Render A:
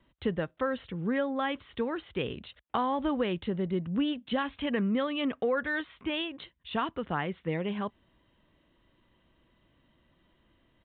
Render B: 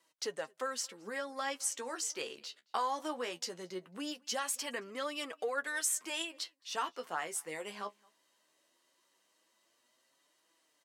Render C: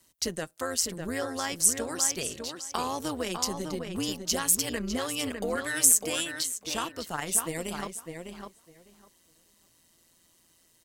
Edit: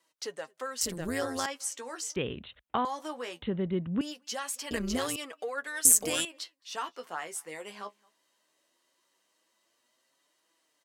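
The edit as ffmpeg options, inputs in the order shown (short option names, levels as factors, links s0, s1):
-filter_complex "[2:a]asplit=3[s0][s1][s2];[0:a]asplit=2[s3][s4];[1:a]asplit=6[s5][s6][s7][s8][s9][s10];[s5]atrim=end=0.812[s11];[s0]atrim=start=0.808:end=1.462[s12];[s6]atrim=start=1.458:end=2.162[s13];[s3]atrim=start=2.158:end=2.852[s14];[s7]atrim=start=2.848:end=3.422[s15];[s4]atrim=start=3.418:end=4.012[s16];[s8]atrim=start=4.008:end=4.712[s17];[s1]atrim=start=4.708:end=5.162[s18];[s9]atrim=start=5.158:end=5.852[s19];[s2]atrim=start=5.848:end=6.252[s20];[s10]atrim=start=6.248[s21];[s11][s12]acrossfade=d=0.004:c1=hsin:c2=hsin[s22];[s22][s13]acrossfade=d=0.004:c1=hsin:c2=hsin[s23];[s23][s14]acrossfade=d=0.004:c1=hsin:c2=hsin[s24];[s24][s15]acrossfade=d=0.004:c1=hsin:c2=hsin[s25];[s25][s16]acrossfade=d=0.004:c1=hsin:c2=hsin[s26];[s26][s17]acrossfade=d=0.004:c1=hsin:c2=hsin[s27];[s27][s18]acrossfade=d=0.004:c1=hsin:c2=hsin[s28];[s28][s19]acrossfade=d=0.004:c1=hsin:c2=hsin[s29];[s29][s20]acrossfade=d=0.004:c1=hsin:c2=hsin[s30];[s30][s21]acrossfade=d=0.004:c1=hsin:c2=hsin"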